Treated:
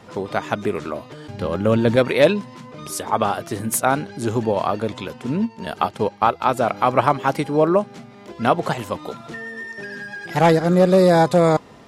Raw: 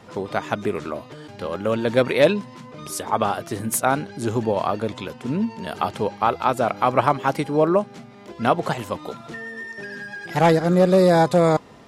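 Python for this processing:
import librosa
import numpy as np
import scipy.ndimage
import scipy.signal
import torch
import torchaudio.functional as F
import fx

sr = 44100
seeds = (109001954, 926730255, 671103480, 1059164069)

y = fx.low_shelf(x, sr, hz=250.0, db=10.5, at=(1.28, 1.96))
y = fx.transient(y, sr, attack_db=2, sustain_db=-8, at=(5.42, 6.42))
y = y * librosa.db_to_amplitude(1.5)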